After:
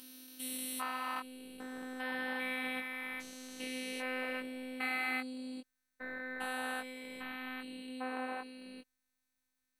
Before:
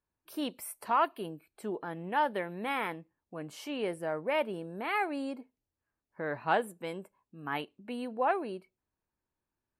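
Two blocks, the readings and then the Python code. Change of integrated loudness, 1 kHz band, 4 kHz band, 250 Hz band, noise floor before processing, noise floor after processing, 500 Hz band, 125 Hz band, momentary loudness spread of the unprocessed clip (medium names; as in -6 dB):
-5.5 dB, -10.0 dB, 0.0 dB, -4.0 dB, under -85 dBFS, -84 dBFS, -11.0 dB, under -20 dB, 14 LU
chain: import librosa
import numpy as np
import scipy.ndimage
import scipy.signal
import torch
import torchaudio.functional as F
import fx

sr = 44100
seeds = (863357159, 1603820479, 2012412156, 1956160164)

y = fx.spec_steps(x, sr, hold_ms=400)
y = fx.tone_stack(y, sr, knobs='5-5-5')
y = fx.robotise(y, sr, hz=256.0)
y = fx.doubler(y, sr, ms=20.0, db=-6.0)
y = y * 10.0 ** (17.5 / 20.0)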